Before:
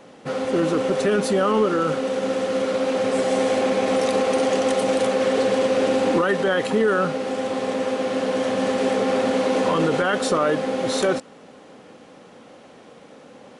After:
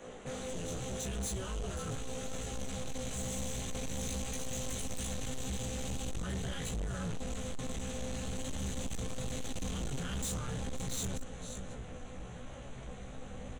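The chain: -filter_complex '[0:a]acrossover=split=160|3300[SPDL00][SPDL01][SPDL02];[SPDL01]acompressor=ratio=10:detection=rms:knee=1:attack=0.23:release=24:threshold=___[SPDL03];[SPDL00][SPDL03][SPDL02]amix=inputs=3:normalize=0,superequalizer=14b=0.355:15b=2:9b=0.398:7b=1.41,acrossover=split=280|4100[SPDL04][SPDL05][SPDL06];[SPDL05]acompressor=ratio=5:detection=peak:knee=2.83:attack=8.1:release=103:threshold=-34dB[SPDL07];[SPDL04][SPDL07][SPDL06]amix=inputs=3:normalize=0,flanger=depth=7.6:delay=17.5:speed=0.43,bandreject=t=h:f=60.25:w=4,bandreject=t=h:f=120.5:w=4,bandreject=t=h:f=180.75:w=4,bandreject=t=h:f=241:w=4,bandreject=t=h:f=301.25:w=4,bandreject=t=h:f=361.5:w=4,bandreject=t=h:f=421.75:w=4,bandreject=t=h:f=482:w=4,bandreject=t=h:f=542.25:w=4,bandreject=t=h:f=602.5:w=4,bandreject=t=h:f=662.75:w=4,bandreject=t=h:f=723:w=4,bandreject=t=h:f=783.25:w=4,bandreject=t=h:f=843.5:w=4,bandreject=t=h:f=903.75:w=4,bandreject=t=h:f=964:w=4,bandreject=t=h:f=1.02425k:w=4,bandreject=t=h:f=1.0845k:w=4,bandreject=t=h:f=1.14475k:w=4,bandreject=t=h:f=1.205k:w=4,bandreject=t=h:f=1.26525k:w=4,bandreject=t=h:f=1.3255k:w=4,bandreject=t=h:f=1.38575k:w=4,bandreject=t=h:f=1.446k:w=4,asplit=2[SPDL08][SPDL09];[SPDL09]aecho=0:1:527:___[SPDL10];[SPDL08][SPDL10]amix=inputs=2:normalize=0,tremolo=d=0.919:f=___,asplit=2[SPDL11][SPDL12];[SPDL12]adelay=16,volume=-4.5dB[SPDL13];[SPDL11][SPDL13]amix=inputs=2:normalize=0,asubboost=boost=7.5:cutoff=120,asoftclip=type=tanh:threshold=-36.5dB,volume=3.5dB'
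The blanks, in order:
-34dB, 0.188, 270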